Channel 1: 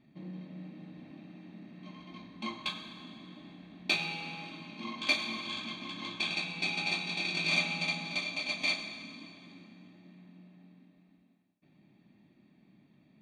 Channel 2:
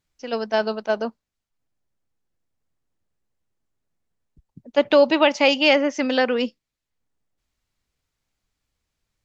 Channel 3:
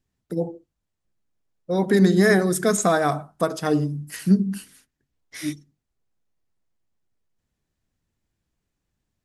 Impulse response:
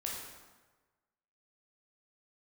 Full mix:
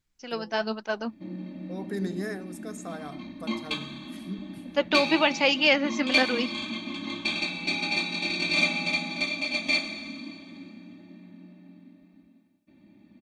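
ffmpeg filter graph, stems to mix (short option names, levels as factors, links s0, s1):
-filter_complex "[0:a]equalizer=f=120:t=o:w=2.9:g=7.5,aecho=1:1:3.4:0.84,adelay=1050,volume=1.19[s0];[1:a]equalizer=f=530:t=o:w=1.2:g=-7,flanger=delay=1.7:depth=6.6:regen=53:speed=1.1:shape=triangular,volume=1.19,asplit=2[s1][s2];[2:a]volume=0.398,afade=t=out:st=2.04:d=0.39:silence=0.266073[s3];[s2]apad=whole_len=407748[s4];[s3][s4]sidechaincompress=threshold=0.00794:ratio=3:attack=11:release=1350[s5];[s0][s1][s5]amix=inputs=3:normalize=0"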